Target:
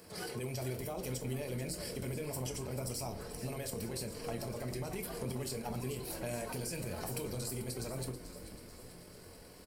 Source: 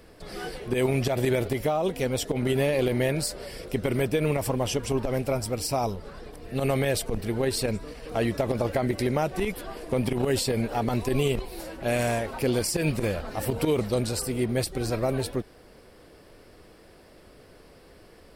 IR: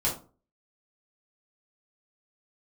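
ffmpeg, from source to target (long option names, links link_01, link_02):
-filter_complex "[0:a]highpass=frequency=80:width=0.5412,highpass=frequency=80:width=1.3066,bass=frequency=250:gain=0,treble=frequency=4000:gain=9,bandreject=frequency=3500:width=9.5,alimiter=limit=-18dB:level=0:latency=1:release=30,acompressor=threshold=-33dB:ratio=10,atempo=1.9,asplit=8[link_01][link_02][link_03][link_04][link_05][link_06][link_07][link_08];[link_02]adelay=437,afreqshift=-74,volume=-12dB[link_09];[link_03]adelay=874,afreqshift=-148,volume=-16.4dB[link_10];[link_04]adelay=1311,afreqshift=-222,volume=-20.9dB[link_11];[link_05]adelay=1748,afreqshift=-296,volume=-25.3dB[link_12];[link_06]adelay=2185,afreqshift=-370,volume=-29.7dB[link_13];[link_07]adelay=2622,afreqshift=-444,volume=-34.2dB[link_14];[link_08]adelay=3059,afreqshift=-518,volume=-38.6dB[link_15];[link_01][link_09][link_10][link_11][link_12][link_13][link_14][link_15]amix=inputs=8:normalize=0,asplit=2[link_16][link_17];[1:a]atrim=start_sample=2205,highshelf=frequency=8800:gain=6.5[link_18];[link_17][link_18]afir=irnorm=-1:irlink=0,volume=-11.5dB[link_19];[link_16][link_19]amix=inputs=2:normalize=0,volume=-6dB"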